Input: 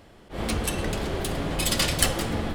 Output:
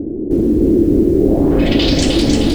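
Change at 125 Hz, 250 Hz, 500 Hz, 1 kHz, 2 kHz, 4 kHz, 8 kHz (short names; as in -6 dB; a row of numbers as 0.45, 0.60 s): +11.0 dB, +20.0 dB, +16.0 dB, +3.0 dB, +2.5 dB, +7.0 dB, n/a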